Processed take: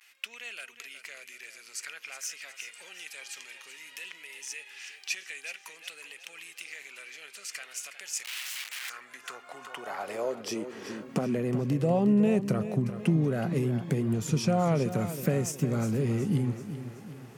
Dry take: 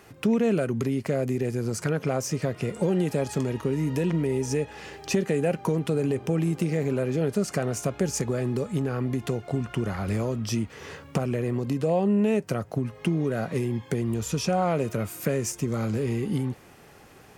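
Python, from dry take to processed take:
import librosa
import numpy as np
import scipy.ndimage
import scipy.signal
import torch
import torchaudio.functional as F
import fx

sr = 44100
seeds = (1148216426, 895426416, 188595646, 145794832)

p1 = x + fx.echo_feedback(x, sr, ms=371, feedback_pct=47, wet_db=-11.5, dry=0)
p2 = fx.overflow_wrap(p1, sr, gain_db=29.0, at=(8.25, 8.9))
p3 = fx.vibrato(p2, sr, rate_hz=0.53, depth_cents=52.0)
p4 = fx.filter_sweep_highpass(p3, sr, from_hz=2400.0, to_hz=140.0, start_s=8.69, end_s=11.64, q=1.8)
y = p4 * librosa.db_to_amplitude(-3.5)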